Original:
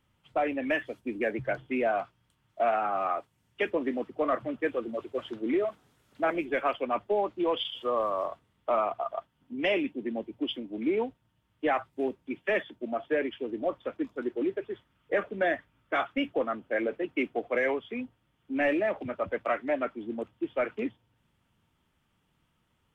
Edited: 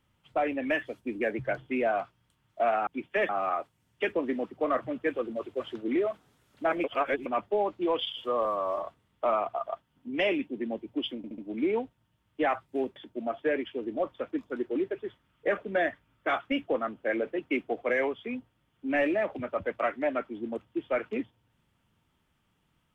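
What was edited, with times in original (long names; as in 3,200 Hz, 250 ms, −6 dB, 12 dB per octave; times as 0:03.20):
0:06.42–0:06.84: reverse
0:08.03–0:08.29: time-stretch 1.5×
0:10.62: stutter 0.07 s, 4 plays
0:12.20–0:12.62: move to 0:02.87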